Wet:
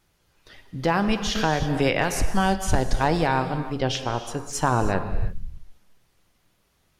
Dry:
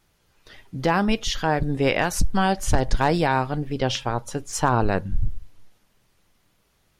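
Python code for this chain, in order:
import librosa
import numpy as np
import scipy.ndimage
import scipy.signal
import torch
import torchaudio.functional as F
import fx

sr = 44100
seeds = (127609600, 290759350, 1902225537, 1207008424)

y = fx.rev_gated(x, sr, seeds[0], gate_ms=360, shape='flat', drr_db=9.0)
y = fx.band_squash(y, sr, depth_pct=70, at=(1.35, 2.22))
y = y * 10.0 ** (-1.5 / 20.0)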